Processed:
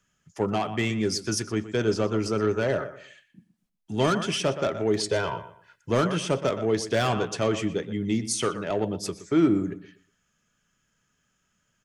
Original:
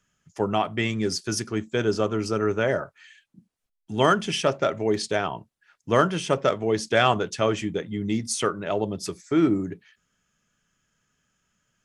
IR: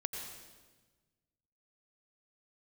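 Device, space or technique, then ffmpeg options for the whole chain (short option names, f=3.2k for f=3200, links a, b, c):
one-band saturation: -filter_complex "[0:a]asettb=1/sr,asplit=3[a][b][c];[a]atrim=end=5.004[d];[b]atrim=start=5:end=5.9,asetpts=PTS-STARTPTS,afade=t=in:d=0.004:c=qsin,afade=t=out:st=0.896:d=0.004:c=qsin,aecho=1:1:2:0.77,atrim=end_sample=39690[e];[c]atrim=start=5.896[f];[d][e]acrossfade=d=0.004:c1=hsin:c2=qsin[g];[g][f]acrossfade=d=0.004:c1=qsin:c2=hsin,asplit=2[h][i];[i]adelay=121,lowpass=f=3.8k:p=1,volume=-14dB,asplit=2[j][k];[k]adelay=121,lowpass=f=3.8k:p=1,volume=0.28,asplit=2[l][m];[m]adelay=121,lowpass=f=3.8k:p=1,volume=0.28[n];[h][j][l][n]amix=inputs=4:normalize=0,acrossover=split=440|4700[o][p][q];[p]asoftclip=type=tanh:threshold=-23.5dB[r];[o][r][q]amix=inputs=3:normalize=0"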